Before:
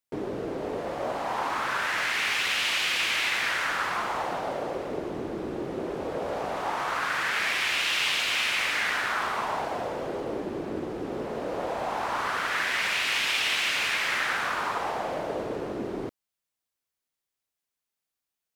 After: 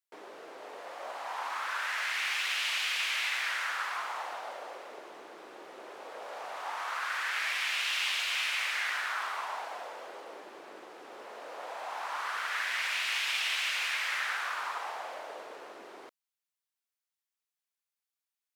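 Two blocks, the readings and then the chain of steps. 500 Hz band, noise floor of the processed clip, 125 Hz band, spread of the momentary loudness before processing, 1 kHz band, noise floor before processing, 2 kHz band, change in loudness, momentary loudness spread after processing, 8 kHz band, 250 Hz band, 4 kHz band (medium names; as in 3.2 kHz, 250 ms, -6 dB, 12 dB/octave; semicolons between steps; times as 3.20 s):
-13.5 dB, under -85 dBFS, under -30 dB, 9 LU, -7.0 dB, under -85 dBFS, -5.0 dB, -4.5 dB, 19 LU, -5.0 dB, -23.0 dB, -5.0 dB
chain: high-pass 850 Hz 12 dB/octave; trim -5 dB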